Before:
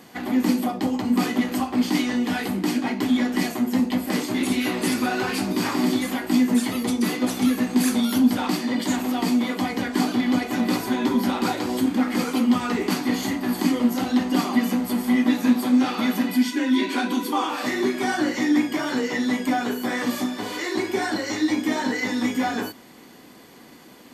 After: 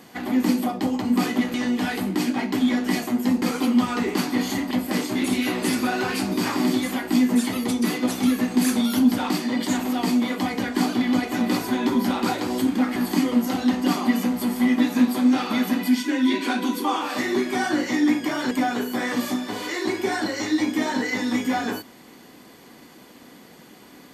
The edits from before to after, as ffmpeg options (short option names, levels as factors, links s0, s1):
-filter_complex "[0:a]asplit=6[s0][s1][s2][s3][s4][s5];[s0]atrim=end=1.542[s6];[s1]atrim=start=2.018:end=3.902[s7];[s2]atrim=start=12.148:end=13.442[s8];[s3]atrim=start=3.898:end=12.152[s9];[s4]atrim=start=13.438:end=18.992[s10];[s5]atrim=start=19.408[s11];[s6][s7]acrossfade=d=0.004:c1=hsin:c2=hsin[s12];[s12][s8]acrossfade=d=0.004:c1=hsin:c2=hsin[s13];[s13][s9]acrossfade=d=0.004:c1=hsin:c2=hsin[s14];[s14][s10]acrossfade=d=0.004:c1=hsin:c2=hsin[s15];[s15][s11]acrossfade=d=0.004:c1=hsin:c2=hsin"